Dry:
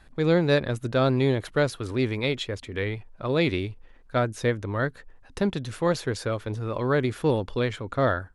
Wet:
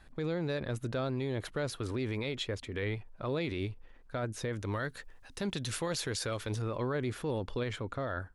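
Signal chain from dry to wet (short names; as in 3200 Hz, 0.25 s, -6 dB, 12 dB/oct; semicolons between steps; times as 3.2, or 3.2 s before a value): 4.53–6.62 high shelf 2200 Hz +11.5 dB; limiter -22.5 dBFS, peak gain reduction 12 dB; gain -3.5 dB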